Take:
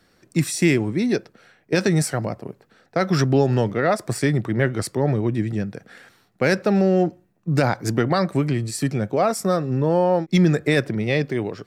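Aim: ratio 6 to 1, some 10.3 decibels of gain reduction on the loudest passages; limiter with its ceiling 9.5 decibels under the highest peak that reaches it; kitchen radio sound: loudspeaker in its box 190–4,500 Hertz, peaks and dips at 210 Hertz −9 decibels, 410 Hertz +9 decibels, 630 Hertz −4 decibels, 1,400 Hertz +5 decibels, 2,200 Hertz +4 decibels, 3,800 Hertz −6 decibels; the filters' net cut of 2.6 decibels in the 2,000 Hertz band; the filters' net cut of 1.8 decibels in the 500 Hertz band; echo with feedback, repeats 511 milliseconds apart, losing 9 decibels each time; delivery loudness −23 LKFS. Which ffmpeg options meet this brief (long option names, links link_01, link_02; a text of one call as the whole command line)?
ffmpeg -i in.wav -af "equalizer=frequency=500:width_type=o:gain=-7.5,equalizer=frequency=2000:width_type=o:gain=-6.5,acompressor=threshold=-26dB:ratio=6,alimiter=limit=-22dB:level=0:latency=1,highpass=190,equalizer=frequency=210:width_type=q:width=4:gain=-9,equalizer=frequency=410:width_type=q:width=4:gain=9,equalizer=frequency=630:width_type=q:width=4:gain=-4,equalizer=frequency=1400:width_type=q:width=4:gain=5,equalizer=frequency=2200:width_type=q:width=4:gain=4,equalizer=frequency=3800:width_type=q:width=4:gain=-6,lowpass=frequency=4500:width=0.5412,lowpass=frequency=4500:width=1.3066,aecho=1:1:511|1022|1533|2044:0.355|0.124|0.0435|0.0152,volume=11dB" out.wav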